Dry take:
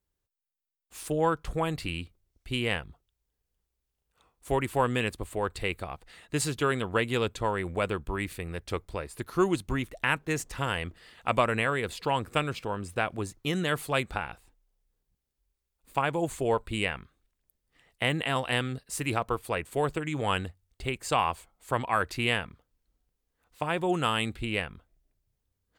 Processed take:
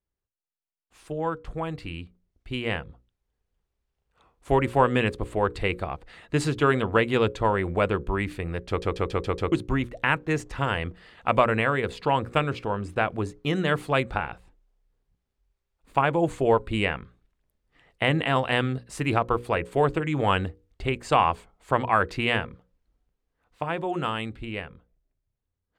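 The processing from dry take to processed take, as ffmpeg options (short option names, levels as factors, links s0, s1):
-filter_complex "[0:a]asplit=7[s0][s1][s2][s3][s4][s5][s6];[s0]atrim=end=8.822[s7];[s1]atrim=start=8.678:end=8.822[s8];[s2]atrim=start=8.678:end=8.822[s9];[s3]atrim=start=8.678:end=8.822[s10];[s4]atrim=start=8.678:end=8.822[s11];[s5]atrim=start=8.678:end=8.822[s12];[s6]atrim=start=9.518[s13];[s7][s8]acrossfade=d=0.004:c1=hsin:c2=hsin[s14];[s14][s9]acrossfade=d=0.004:c1=hsin:c2=hsin[s15];[s15][s10]acrossfade=d=0.004:c1=hsin:c2=hsin[s16];[s16][s11]acrossfade=d=0.004:c1=hsin:c2=hsin[s17];[s17][s12]acrossfade=d=0.004:c1=hsin:c2=hsin[s18];[s18][s13]acrossfade=d=0.004:c1=hsin:c2=hsin,aemphasis=mode=reproduction:type=75fm,bandreject=f=60:t=h:w=6,bandreject=f=120:t=h:w=6,bandreject=f=180:t=h:w=6,bandreject=f=240:t=h:w=6,bandreject=f=300:t=h:w=6,bandreject=f=360:t=h:w=6,bandreject=f=420:t=h:w=6,bandreject=f=480:t=h:w=6,bandreject=f=540:t=h:w=6,dynaudnorm=f=270:g=21:m=3.55,volume=0.668"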